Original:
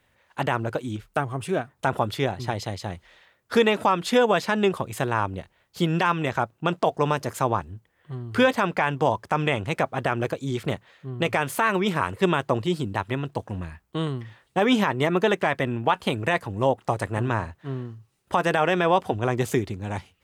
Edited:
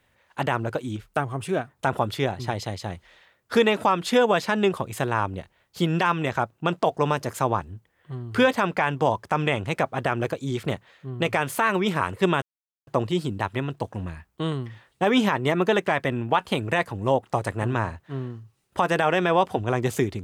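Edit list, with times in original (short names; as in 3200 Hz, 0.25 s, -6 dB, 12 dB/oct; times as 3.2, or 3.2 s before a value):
12.42 insert silence 0.45 s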